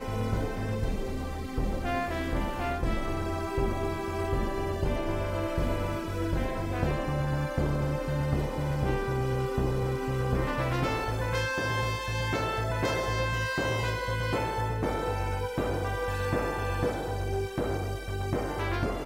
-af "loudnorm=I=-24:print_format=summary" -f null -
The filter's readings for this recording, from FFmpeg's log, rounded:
Input Integrated:    -30.6 LUFS
Input True Peak:     -14.4 dBTP
Input LRA:             2.0 LU
Input Threshold:     -40.6 LUFS